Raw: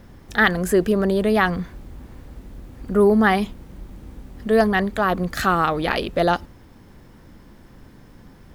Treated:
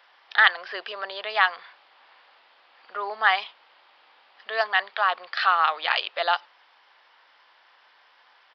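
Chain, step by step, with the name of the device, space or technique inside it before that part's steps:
musical greeting card (downsampling to 11,025 Hz; high-pass filter 790 Hz 24 dB per octave; parametric band 3,000 Hz +5 dB 0.56 octaves)

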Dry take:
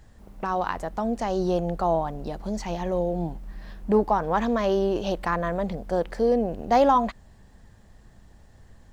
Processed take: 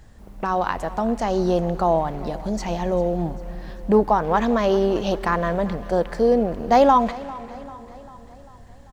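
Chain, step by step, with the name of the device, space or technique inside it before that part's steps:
repeating echo 395 ms, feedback 56%, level −19.5 dB
saturated reverb return (on a send at −14 dB: convolution reverb RT60 2.6 s, pre-delay 86 ms + soft clipping −28 dBFS, distortion −7 dB)
on the sum: level +4 dB

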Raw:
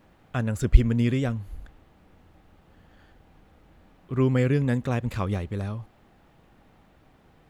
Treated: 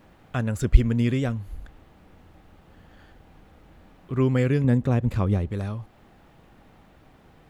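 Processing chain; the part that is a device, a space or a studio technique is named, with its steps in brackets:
parallel compression (in parallel at −5 dB: downward compressor, threshold −41 dBFS, peak gain reduction 30 dB)
0:04.64–0:05.51: on the sum: tilt shelving filter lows +5 dB, about 740 Hz

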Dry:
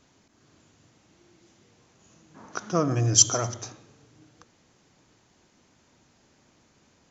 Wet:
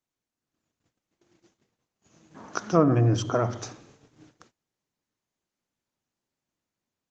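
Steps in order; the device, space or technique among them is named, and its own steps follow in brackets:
treble cut that deepens with the level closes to 1,700 Hz, closed at −20.5 dBFS
0:02.77–0:03.72: dynamic equaliser 240 Hz, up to +3 dB, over −40 dBFS, Q 0.82
video call (high-pass filter 100 Hz 6 dB per octave; automatic gain control gain up to 4 dB; noise gate −53 dBFS, range −28 dB; Opus 20 kbit/s 48,000 Hz)

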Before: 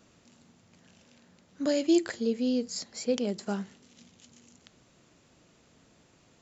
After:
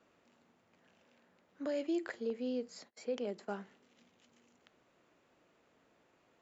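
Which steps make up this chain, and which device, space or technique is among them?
0:02.30–0:03.61: noise gate −43 dBFS, range −30 dB
DJ mixer with the lows and highs turned down (three-way crossover with the lows and the highs turned down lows −13 dB, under 300 Hz, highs −14 dB, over 2,800 Hz; brickwall limiter −23.5 dBFS, peak gain reduction 5 dB)
level −4.5 dB

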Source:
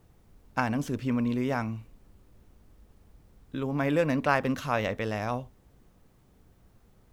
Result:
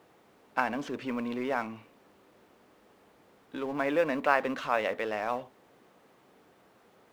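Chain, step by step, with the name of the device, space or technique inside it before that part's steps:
phone line with mismatched companding (band-pass filter 380–3,400 Hz; mu-law and A-law mismatch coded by mu)

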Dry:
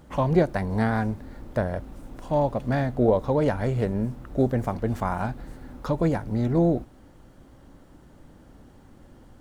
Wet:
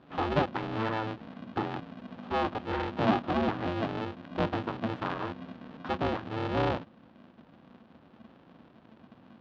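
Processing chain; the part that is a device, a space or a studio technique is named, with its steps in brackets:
ring modulator pedal into a guitar cabinet (ring modulator with a square carrier 220 Hz; loudspeaker in its box 100–3,600 Hz, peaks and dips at 230 Hz +5 dB, 440 Hz −6 dB, 2,100 Hz −5 dB)
level −5.5 dB

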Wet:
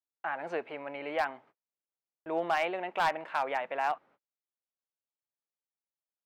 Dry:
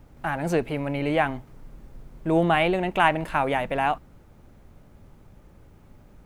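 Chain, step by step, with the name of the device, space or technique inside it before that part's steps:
walkie-talkie (band-pass filter 580–2,500 Hz; hard clipping −16 dBFS, distortion −14 dB; noise gate −52 dBFS, range −41 dB)
level −5 dB

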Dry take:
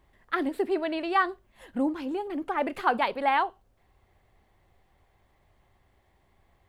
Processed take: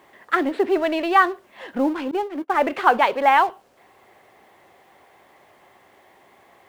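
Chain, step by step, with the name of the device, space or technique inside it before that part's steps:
phone line with mismatched companding (band-pass filter 320–3,400 Hz; mu-law and A-law mismatch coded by mu)
0:02.11–0:02.64: noise gate −33 dBFS, range −29 dB
level +8 dB

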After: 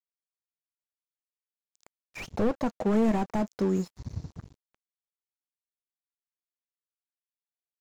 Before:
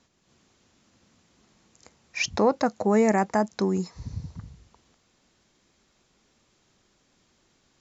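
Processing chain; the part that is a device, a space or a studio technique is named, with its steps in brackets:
early transistor amplifier (dead-zone distortion −44.5 dBFS; slew-rate limiting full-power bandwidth 32 Hz)

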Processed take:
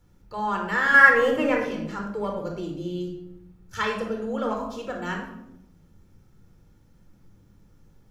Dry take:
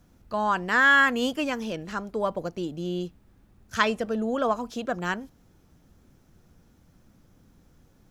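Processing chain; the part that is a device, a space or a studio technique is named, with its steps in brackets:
0:00.94–0:01.62: graphic EQ with 10 bands 125 Hz +10 dB, 500 Hz +10 dB, 1,000 Hz +5 dB, 2,000 Hz +12 dB, 4,000 Hz −10 dB
parallel distortion (in parallel at −10 dB: hard clipping −19.5 dBFS, distortion −3 dB)
on the sum: rectangular room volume 2,200 cubic metres, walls furnished, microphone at 4.3 metres
level −8.5 dB

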